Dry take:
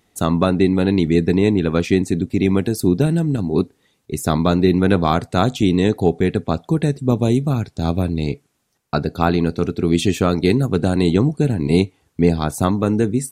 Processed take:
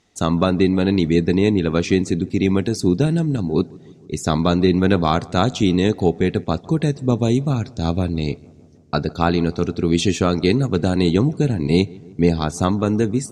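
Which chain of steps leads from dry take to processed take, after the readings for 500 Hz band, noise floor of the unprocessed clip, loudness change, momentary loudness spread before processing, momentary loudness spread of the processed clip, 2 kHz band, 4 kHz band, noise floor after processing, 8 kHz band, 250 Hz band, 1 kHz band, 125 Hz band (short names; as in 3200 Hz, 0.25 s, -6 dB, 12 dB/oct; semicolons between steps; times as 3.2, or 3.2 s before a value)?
-1.0 dB, -66 dBFS, -1.0 dB, 6 LU, 6 LU, -0.5 dB, +1.5 dB, -45 dBFS, 0.0 dB, -1.0 dB, -1.0 dB, -1.0 dB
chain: synth low-pass 6200 Hz, resonance Q 1.8; on a send: darkening echo 0.154 s, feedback 70%, low-pass 1600 Hz, level -23.5 dB; on the sum: gain -1 dB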